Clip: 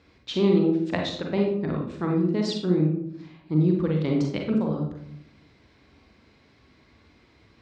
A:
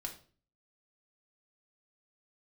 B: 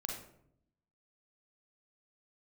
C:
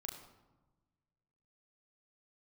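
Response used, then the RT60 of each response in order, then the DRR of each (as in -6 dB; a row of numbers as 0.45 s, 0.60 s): B; 0.40 s, 0.70 s, 1.2 s; 1.5 dB, 0.5 dB, 0.5 dB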